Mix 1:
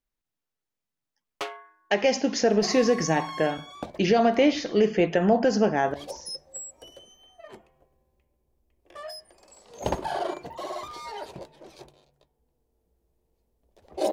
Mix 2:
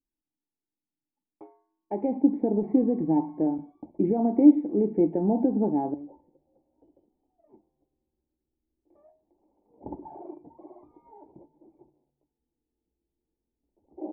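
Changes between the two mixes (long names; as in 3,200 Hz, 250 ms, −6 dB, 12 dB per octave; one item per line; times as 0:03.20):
speech +8.0 dB
master: add formant resonators in series u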